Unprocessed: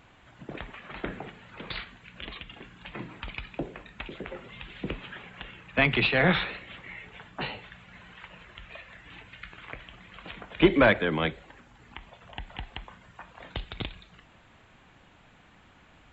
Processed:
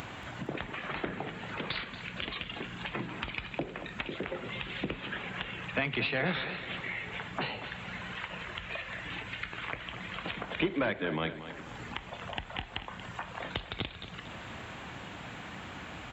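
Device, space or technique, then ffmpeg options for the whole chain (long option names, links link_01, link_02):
upward and downward compression: -af "acompressor=mode=upward:threshold=-44dB:ratio=2.5,acompressor=threshold=-43dB:ratio=3,highpass=72,aecho=1:1:232|464|696|928|1160:0.251|0.121|0.0579|0.0278|0.0133,volume=8.5dB"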